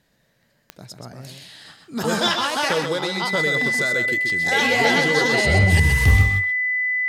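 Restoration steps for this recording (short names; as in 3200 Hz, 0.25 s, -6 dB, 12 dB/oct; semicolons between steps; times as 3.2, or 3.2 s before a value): de-click; notch 2000 Hz, Q 30; inverse comb 0.129 s -6 dB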